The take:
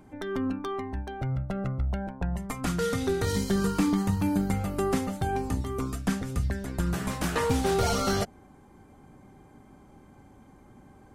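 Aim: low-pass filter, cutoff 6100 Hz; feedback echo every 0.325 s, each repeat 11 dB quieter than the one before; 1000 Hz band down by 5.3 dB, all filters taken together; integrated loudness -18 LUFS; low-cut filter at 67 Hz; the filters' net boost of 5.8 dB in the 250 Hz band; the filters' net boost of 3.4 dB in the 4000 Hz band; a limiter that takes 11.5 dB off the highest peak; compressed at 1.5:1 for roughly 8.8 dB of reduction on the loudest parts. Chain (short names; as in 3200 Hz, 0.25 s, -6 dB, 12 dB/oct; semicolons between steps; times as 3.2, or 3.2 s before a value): HPF 67 Hz; LPF 6100 Hz; bell 250 Hz +8 dB; bell 1000 Hz -8.5 dB; bell 4000 Hz +5.5 dB; compressor 1.5:1, threshold -41 dBFS; limiter -29 dBFS; feedback echo 0.325 s, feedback 28%, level -11 dB; gain +19 dB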